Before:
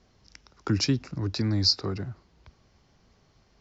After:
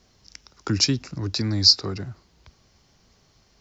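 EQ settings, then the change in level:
high-shelf EQ 4,100 Hz +11.5 dB
+1.0 dB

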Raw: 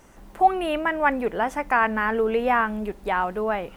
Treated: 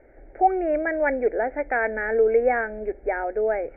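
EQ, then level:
Chebyshev low-pass with heavy ripple 2,300 Hz, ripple 6 dB
phaser with its sweep stopped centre 440 Hz, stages 4
+6.0 dB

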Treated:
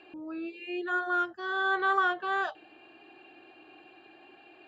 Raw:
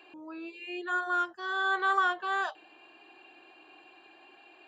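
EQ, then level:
high-frequency loss of the air 98 metres
low-shelf EQ 250 Hz +11.5 dB
notch filter 1,000 Hz, Q 6.2
+1.0 dB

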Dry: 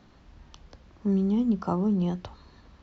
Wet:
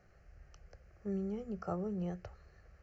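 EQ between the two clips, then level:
phaser with its sweep stopped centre 970 Hz, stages 6
−5.0 dB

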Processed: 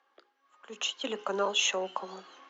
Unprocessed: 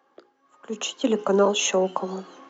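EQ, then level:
low-pass filter 3,200 Hz 12 dB per octave
spectral tilt +5 dB per octave
−6.5 dB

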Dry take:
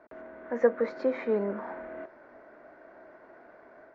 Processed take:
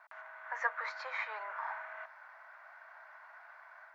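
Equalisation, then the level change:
Butterworth high-pass 880 Hz 36 dB per octave
+4.5 dB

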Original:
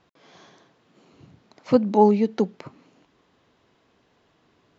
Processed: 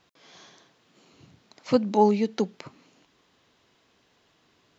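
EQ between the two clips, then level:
high-shelf EQ 2,200 Hz +10.5 dB
−4.0 dB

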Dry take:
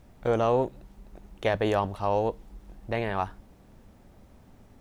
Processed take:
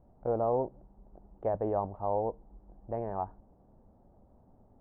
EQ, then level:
transistor ladder low-pass 1,000 Hz, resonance 35%
0.0 dB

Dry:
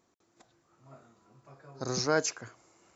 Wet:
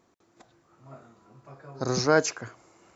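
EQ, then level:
high-shelf EQ 4,200 Hz −7 dB
+6.5 dB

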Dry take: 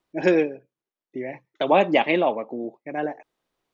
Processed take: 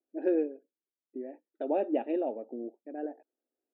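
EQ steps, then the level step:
moving average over 41 samples
linear-phase brick-wall high-pass 220 Hz
high-frequency loss of the air 130 metres
−5.5 dB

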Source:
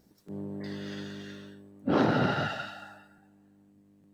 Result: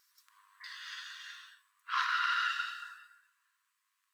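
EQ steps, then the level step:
linear-phase brick-wall high-pass 960 Hz
+2.5 dB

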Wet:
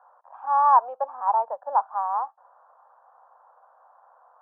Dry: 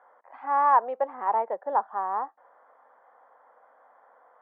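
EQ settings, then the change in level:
band-pass filter 470–2,100 Hz
parametric band 1,400 Hz +5 dB 2.3 octaves
phaser with its sweep stopped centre 850 Hz, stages 4
0.0 dB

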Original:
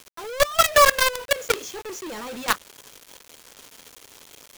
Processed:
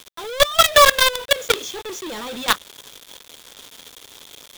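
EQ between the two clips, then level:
parametric band 3,500 Hz +10.5 dB 0.24 octaves
+3.0 dB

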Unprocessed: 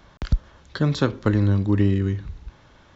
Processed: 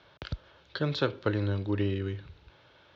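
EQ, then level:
loudspeaker in its box 150–4,300 Hz, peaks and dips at 760 Hz −6 dB, 1,100 Hz −8 dB, 1,900 Hz −7 dB
parametric band 220 Hz −14.5 dB 1.1 octaves
0.0 dB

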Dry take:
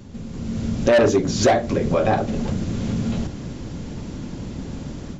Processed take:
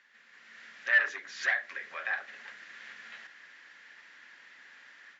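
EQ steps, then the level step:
four-pole ladder band-pass 1,900 Hz, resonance 75%
+3.0 dB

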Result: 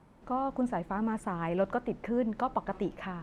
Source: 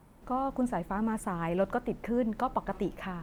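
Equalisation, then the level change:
high-frequency loss of the air 63 metres
low-shelf EQ 71 Hz −7 dB
0.0 dB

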